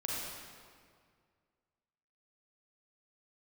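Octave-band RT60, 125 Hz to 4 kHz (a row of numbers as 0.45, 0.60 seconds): 2.4, 2.2, 2.1, 2.0, 1.8, 1.5 seconds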